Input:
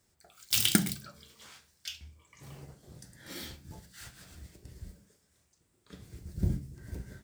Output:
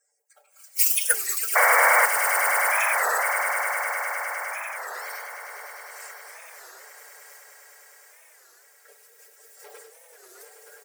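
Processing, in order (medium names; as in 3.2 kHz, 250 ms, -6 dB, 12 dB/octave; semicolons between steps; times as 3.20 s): coarse spectral quantiser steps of 30 dB; treble shelf 5.7 kHz +5.5 dB; static phaser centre 720 Hz, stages 8; in parallel at -7 dB: companded quantiser 4-bit; on the sum: whisper effect; granular stretch 1.5×, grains 22 ms; comb 6.8 ms, depth 78%; painted sound noise, 1.55–2.06 s, 470–2300 Hz -18 dBFS; brick-wall FIR high-pass 370 Hz; on a send: echo with a slow build-up 102 ms, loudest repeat 8, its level -11.5 dB; on the sum: warped record 33 1/3 rpm, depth 250 cents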